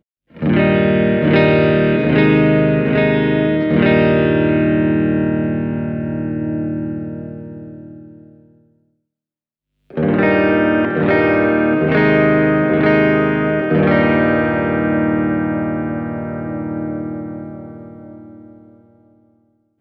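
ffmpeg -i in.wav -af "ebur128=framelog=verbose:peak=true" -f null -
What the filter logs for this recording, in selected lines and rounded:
Integrated loudness:
  I:         -15.3 LUFS
  Threshold: -26.5 LUFS
Loudness range:
  LRA:        13.5 LU
  Threshold: -36.6 LUFS
  LRA low:   -27.3 LUFS
  LRA high:  -13.7 LUFS
True peak:
  Peak:       -1.7 dBFS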